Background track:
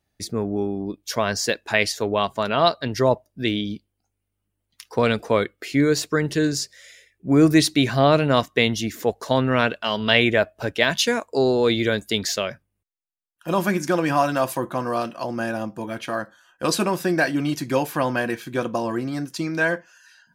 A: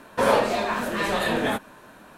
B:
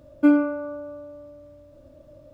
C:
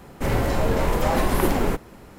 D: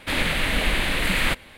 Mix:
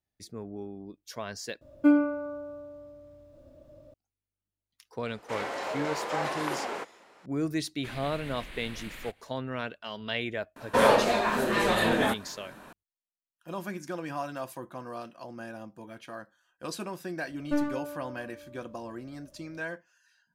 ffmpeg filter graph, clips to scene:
-filter_complex "[2:a]asplit=2[s0][s1];[0:a]volume=0.178[s2];[3:a]highpass=590,lowpass=6500[s3];[4:a]alimiter=limit=0.1:level=0:latency=1:release=289[s4];[s1]aeval=exprs='clip(val(0),-1,0.0596)':c=same[s5];[s2]asplit=2[s6][s7];[s6]atrim=end=1.614[s8];[s0]atrim=end=2.33,asetpts=PTS-STARTPTS,volume=0.631[s9];[s7]atrim=start=3.936[s10];[s3]atrim=end=2.18,asetpts=PTS-STARTPTS,volume=0.531,afade=t=in:d=0.004:c=hsin,afade=t=out:st=2.176:d=0.004:c=hsin,adelay=5080[s11];[s4]atrim=end=1.57,asetpts=PTS-STARTPTS,volume=0.211,afade=t=in:d=0.1,afade=t=out:st=1.47:d=0.1,adelay=7770[s12];[1:a]atrim=end=2.17,asetpts=PTS-STARTPTS,volume=0.891,afade=t=in:d=0.004:c=hsin,afade=t=out:st=2.166:d=0.004:c=hsin,adelay=10560[s13];[s5]atrim=end=2.33,asetpts=PTS-STARTPTS,volume=0.376,afade=t=in:d=0.004:c=hsin,afade=t=out:st=2.326:d=0.004:c=hsin,adelay=17280[s14];[s8][s9]acrossfade=d=0.004:c1=hsin:c2=hsin[s15];[s15][s10]acrossfade=d=0.004:c1=hsin:c2=hsin[s16];[s16][s11][s12][s13][s14]amix=inputs=5:normalize=0"

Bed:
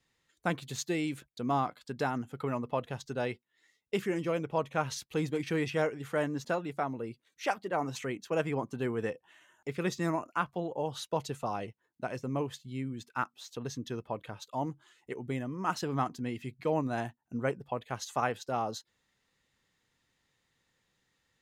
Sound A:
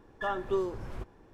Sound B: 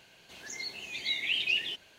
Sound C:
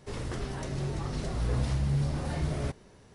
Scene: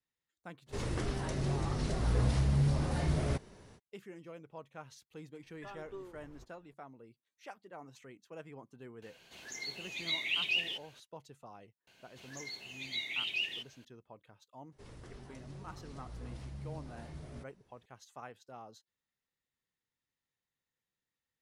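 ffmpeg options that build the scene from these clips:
-filter_complex "[3:a]asplit=2[s0][s1];[2:a]asplit=2[s2][s3];[0:a]volume=0.133[s4];[s0]atrim=end=3.14,asetpts=PTS-STARTPTS,volume=0.944,afade=t=in:d=0.05,afade=t=out:st=3.09:d=0.05,adelay=660[s5];[1:a]atrim=end=1.33,asetpts=PTS-STARTPTS,volume=0.141,afade=t=in:d=0.004:c=hsin,afade=t=out:st=1.326:d=0.004:c=hsin,adelay=238581S[s6];[s2]atrim=end=1.98,asetpts=PTS-STARTPTS,volume=0.708,afade=t=in:d=0.004:c=hsin,afade=t=out:st=1.976:d=0.004:c=hsin,adelay=9020[s7];[s3]atrim=end=1.98,asetpts=PTS-STARTPTS,volume=0.501,afade=t=in:d=0.004:c=hsin,afade=t=out:st=1.976:d=0.004:c=hsin,adelay=11870[s8];[s1]atrim=end=3.14,asetpts=PTS-STARTPTS,volume=0.15,afade=t=in:d=0.004:c=hsin,afade=t=out:st=3.136:d=0.004:c=hsin,adelay=14720[s9];[s4][s5][s6][s7][s8][s9]amix=inputs=6:normalize=0"

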